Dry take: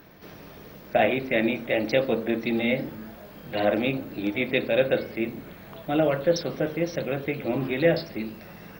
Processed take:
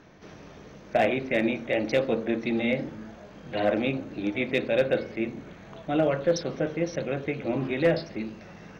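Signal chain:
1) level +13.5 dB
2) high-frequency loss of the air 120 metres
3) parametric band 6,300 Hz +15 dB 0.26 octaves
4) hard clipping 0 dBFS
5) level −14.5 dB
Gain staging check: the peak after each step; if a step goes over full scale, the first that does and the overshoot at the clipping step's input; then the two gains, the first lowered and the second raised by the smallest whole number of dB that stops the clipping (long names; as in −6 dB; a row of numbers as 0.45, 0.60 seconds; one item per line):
+4.5, +4.0, +4.0, 0.0, −14.5 dBFS
step 1, 4.0 dB
step 1 +9.5 dB, step 5 −10.5 dB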